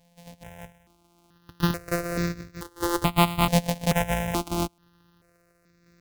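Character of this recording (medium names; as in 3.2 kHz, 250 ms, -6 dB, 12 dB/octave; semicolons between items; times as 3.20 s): a buzz of ramps at a fixed pitch in blocks of 256 samples; random-step tremolo 2.9 Hz; notches that jump at a steady rate 2.3 Hz 350–3100 Hz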